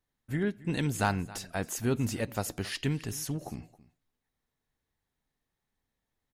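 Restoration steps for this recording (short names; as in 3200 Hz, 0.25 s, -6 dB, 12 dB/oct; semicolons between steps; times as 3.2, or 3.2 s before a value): clip repair -15.5 dBFS; inverse comb 0.271 s -20 dB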